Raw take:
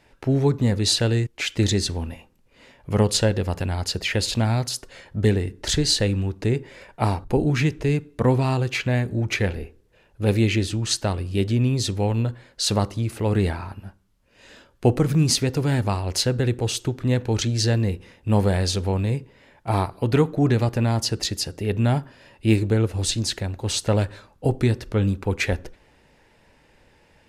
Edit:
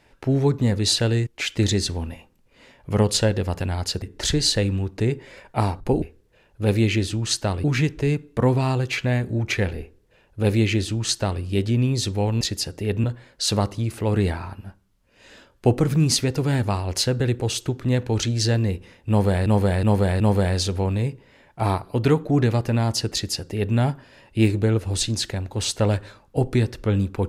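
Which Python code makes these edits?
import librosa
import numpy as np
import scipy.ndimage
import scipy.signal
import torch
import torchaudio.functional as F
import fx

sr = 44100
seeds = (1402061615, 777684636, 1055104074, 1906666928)

y = fx.edit(x, sr, fx.cut(start_s=4.02, length_s=1.44),
    fx.duplicate(start_s=9.62, length_s=1.62, to_s=7.46),
    fx.repeat(start_s=18.28, length_s=0.37, count=4),
    fx.duplicate(start_s=21.21, length_s=0.63, to_s=12.23), tone=tone)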